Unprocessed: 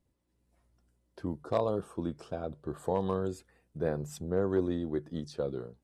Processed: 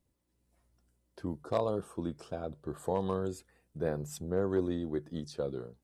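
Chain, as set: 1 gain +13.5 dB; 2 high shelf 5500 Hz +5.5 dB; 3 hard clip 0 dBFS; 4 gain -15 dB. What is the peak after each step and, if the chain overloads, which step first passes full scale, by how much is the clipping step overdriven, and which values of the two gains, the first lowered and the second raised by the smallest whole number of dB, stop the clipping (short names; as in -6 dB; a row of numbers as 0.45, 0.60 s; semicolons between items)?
-4.0, -4.0, -4.0, -19.0 dBFS; no overload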